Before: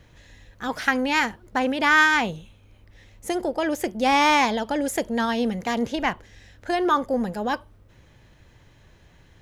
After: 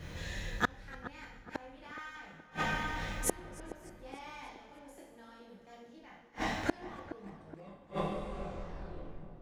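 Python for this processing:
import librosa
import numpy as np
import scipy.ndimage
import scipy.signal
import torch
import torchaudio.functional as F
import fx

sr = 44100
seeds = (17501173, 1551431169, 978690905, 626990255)

p1 = fx.tape_stop_end(x, sr, length_s=2.59)
p2 = fx.doubler(p1, sr, ms=25.0, db=-6)
p3 = fx.rev_double_slope(p2, sr, seeds[0], early_s=0.83, late_s=2.5, knee_db=-18, drr_db=-5.5)
p4 = fx.gate_flip(p3, sr, shuts_db=-17.0, range_db=-39)
p5 = p4 + fx.echo_filtered(p4, sr, ms=421, feedback_pct=55, hz=1100.0, wet_db=-11.5, dry=0)
p6 = fx.echo_warbled(p5, sr, ms=299, feedback_pct=56, rate_hz=2.8, cents=183, wet_db=-22)
y = p6 * librosa.db_to_amplitude(2.5)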